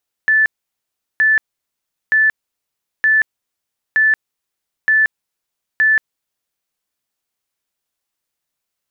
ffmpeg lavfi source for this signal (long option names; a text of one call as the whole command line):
ffmpeg -f lavfi -i "aevalsrc='0.335*sin(2*PI*1750*mod(t,0.92))*lt(mod(t,0.92),313/1750)':duration=6.44:sample_rate=44100" out.wav